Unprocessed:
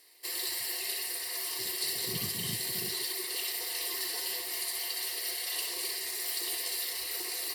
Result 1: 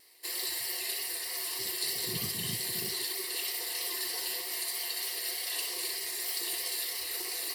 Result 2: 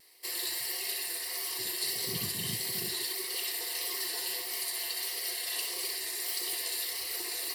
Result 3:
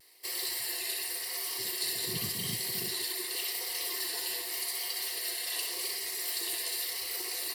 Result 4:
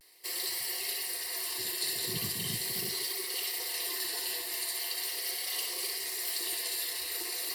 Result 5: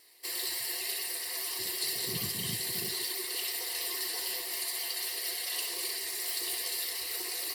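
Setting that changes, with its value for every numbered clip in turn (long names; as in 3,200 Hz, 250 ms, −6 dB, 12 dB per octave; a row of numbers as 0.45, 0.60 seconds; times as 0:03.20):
pitch vibrato, speed: 3.2, 1.6, 0.88, 0.4, 9.2 Hertz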